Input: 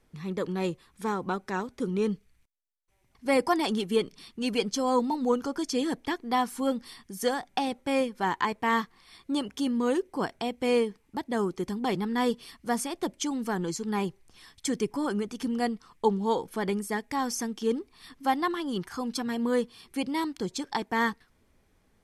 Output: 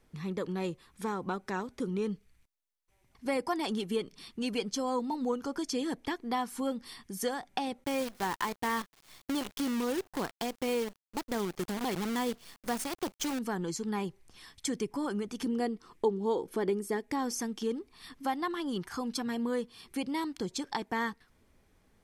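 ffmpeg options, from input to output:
-filter_complex "[0:a]asettb=1/sr,asplit=3[s0][s1][s2];[s0]atrim=end=7.844[s3];[s1]atrim=start=7.84:end=13.39,asetpts=PTS-STARTPTS,afade=t=in:d=0.004:c=qsin,afade=t=out:st=5.546:d=0.004:c=qsin,acrusher=bits=6:dc=4:mix=0:aa=0.000001[s4];[s2]atrim=start=13.386[s5];[s3][s4]acrossfade=d=0.004:c1=hsin:c2=qsin[s6];[s6][s5]acrossfade=d=0.004:c1=qsin:c2=hsin,asettb=1/sr,asplit=3[s7][s8][s9];[s7]atrim=end=15.464[s10];[s8]atrim=start=15.46:end=17.39,asetpts=PTS-STARTPTS,afade=t=in:d=0.004:c=qsin,afade=t=out:st=1.926:d=0.004:c=qsin,equalizer=f=370:t=o:w=0.84:g=10.5[s11];[s9]atrim=start=17.386[s12];[s10][s11]acrossfade=d=0.004:c1=hsin:c2=qsin[s13];[s13][s12]acrossfade=d=0.004:c1=qsin:c2=hsin,acompressor=threshold=0.0224:ratio=2"

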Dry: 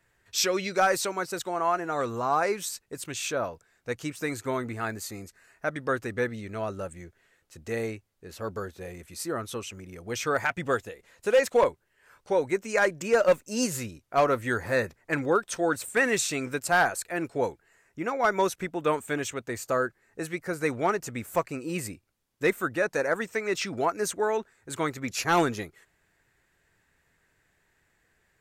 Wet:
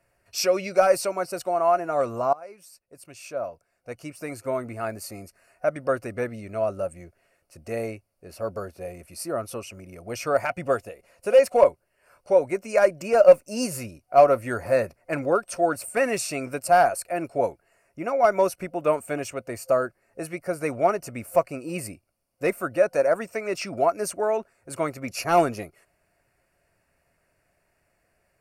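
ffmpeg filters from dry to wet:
-filter_complex "[0:a]asplit=2[s0][s1];[s0]atrim=end=2.33,asetpts=PTS-STARTPTS,afade=t=out:st=2.326:d=0.004:c=hsin:silence=0.0630957[s2];[s1]atrim=start=2.33,asetpts=PTS-STARTPTS,afade=t=in:d=2.83:silence=0.0630957[s3];[s2][s3]concat=n=2:v=0:a=1,superequalizer=8b=2.82:11b=0.562:13b=0.282:15b=0.562:16b=1.58"

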